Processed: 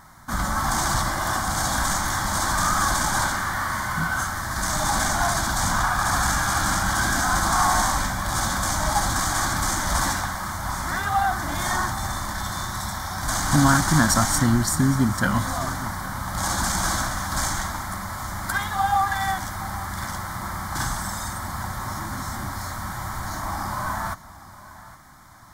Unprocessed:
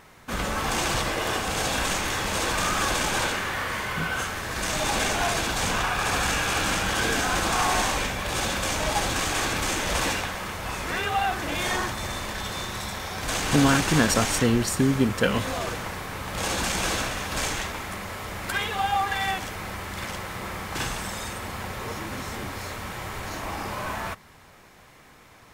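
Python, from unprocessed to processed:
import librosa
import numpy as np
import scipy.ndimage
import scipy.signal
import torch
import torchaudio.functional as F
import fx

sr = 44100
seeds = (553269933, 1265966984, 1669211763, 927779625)

y = fx.fixed_phaser(x, sr, hz=1100.0, stages=4)
y = y + 10.0 ** (-17.5 / 20.0) * np.pad(y, (int(813 * sr / 1000.0), 0))[:len(y)]
y = y * librosa.db_to_amplitude(5.5)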